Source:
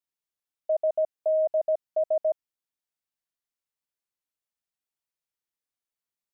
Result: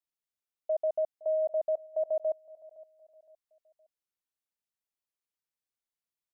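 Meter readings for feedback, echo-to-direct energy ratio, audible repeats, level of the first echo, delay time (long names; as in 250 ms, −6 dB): 39%, −20.5 dB, 2, −21.0 dB, 515 ms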